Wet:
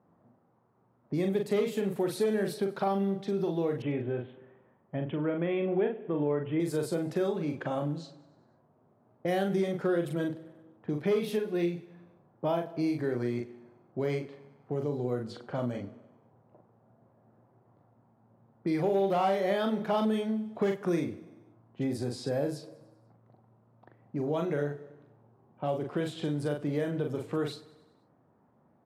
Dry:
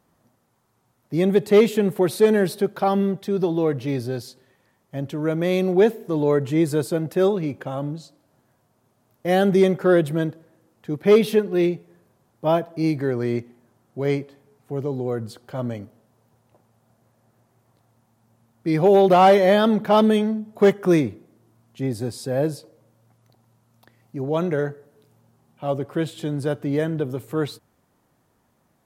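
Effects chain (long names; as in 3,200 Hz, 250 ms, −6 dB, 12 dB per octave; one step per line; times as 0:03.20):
double-tracking delay 41 ms −4.5 dB
downward compressor 3 to 1, threshold −30 dBFS, peak gain reduction 16.5 dB
high-pass filter 110 Hz
low-pass that shuts in the quiet parts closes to 1,000 Hz, open at −27 dBFS
0:03.82–0:06.60: Butterworth low-pass 3,300 Hz 96 dB per octave
repeating echo 97 ms, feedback 59%, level −20 dB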